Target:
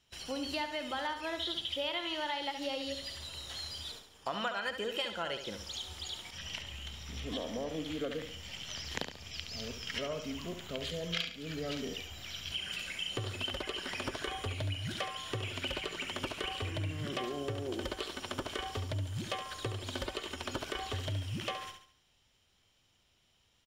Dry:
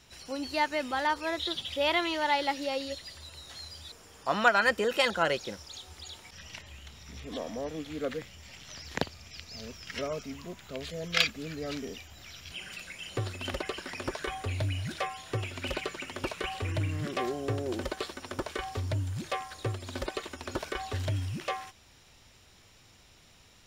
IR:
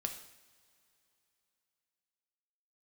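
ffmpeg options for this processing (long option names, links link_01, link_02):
-af "agate=range=-16dB:threshold=-51dB:ratio=16:detection=peak,equalizer=frequency=3100:width_type=o:width=0.21:gain=10,acompressor=threshold=-35dB:ratio=6,aecho=1:1:70|140|210|280|350:0.376|0.154|0.0632|0.0259|0.0106,volume=1dB"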